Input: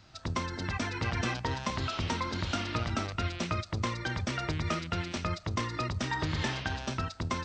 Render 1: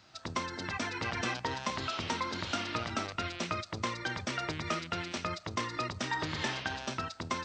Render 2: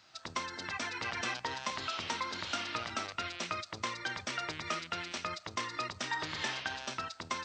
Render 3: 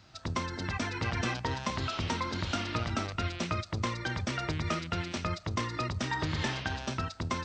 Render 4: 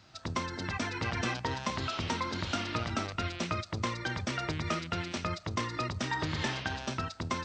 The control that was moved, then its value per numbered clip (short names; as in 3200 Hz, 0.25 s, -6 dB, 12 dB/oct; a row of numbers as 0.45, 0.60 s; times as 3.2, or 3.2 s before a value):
HPF, cutoff: 280, 880, 43, 110 Hz